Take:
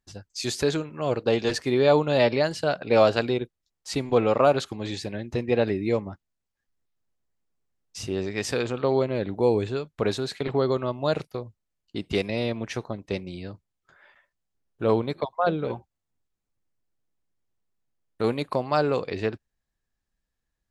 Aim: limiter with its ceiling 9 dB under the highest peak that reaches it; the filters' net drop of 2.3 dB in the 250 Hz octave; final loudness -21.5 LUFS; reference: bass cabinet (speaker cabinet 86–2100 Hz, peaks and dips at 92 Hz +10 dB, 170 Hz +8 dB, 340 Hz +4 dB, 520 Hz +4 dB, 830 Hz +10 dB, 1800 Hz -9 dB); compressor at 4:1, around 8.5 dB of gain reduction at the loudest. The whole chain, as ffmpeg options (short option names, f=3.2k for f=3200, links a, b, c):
-af "equalizer=f=250:t=o:g=-8,acompressor=threshold=-25dB:ratio=4,alimiter=limit=-21dB:level=0:latency=1,highpass=f=86:w=0.5412,highpass=f=86:w=1.3066,equalizer=f=92:t=q:w=4:g=10,equalizer=f=170:t=q:w=4:g=8,equalizer=f=340:t=q:w=4:g=4,equalizer=f=520:t=q:w=4:g=4,equalizer=f=830:t=q:w=4:g=10,equalizer=f=1.8k:t=q:w=4:g=-9,lowpass=f=2.1k:w=0.5412,lowpass=f=2.1k:w=1.3066,volume=9dB"